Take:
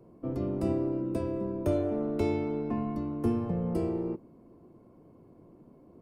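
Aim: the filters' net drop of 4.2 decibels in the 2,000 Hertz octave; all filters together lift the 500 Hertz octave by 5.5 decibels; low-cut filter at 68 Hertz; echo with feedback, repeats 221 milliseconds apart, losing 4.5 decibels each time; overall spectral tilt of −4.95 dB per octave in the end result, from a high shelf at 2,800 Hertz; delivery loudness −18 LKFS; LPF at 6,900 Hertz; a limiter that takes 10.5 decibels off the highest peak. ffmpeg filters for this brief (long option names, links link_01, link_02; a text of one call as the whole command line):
ffmpeg -i in.wav -af "highpass=68,lowpass=6900,equalizer=frequency=500:width_type=o:gain=7.5,equalizer=frequency=2000:width_type=o:gain=-3,highshelf=frequency=2800:gain=-5.5,alimiter=limit=-23dB:level=0:latency=1,aecho=1:1:221|442|663|884|1105|1326|1547|1768|1989:0.596|0.357|0.214|0.129|0.0772|0.0463|0.0278|0.0167|0.01,volume=11dB" out.wav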